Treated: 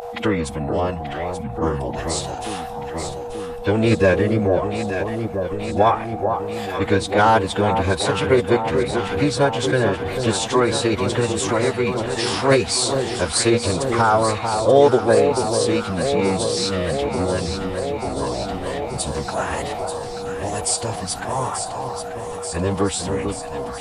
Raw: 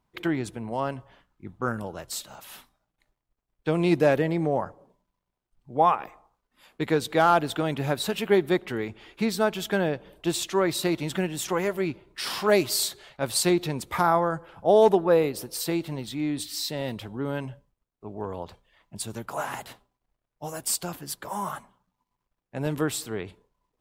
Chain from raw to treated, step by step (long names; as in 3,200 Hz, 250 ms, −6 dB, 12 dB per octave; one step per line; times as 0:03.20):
steady tone 740 Hz −38 dBFS
phase-vocoder pitch shift with formants kept −7.5 semitones
delay that swaps between a low-pass and a high-pass 442 ms, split 1,200 Hz, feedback 82%, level −7.5 dB
in parallel at +1 dB: downward compressor, threshold −32 dBFS, peak gain reduction 17.5 dB
on the sum: level +3.5 dB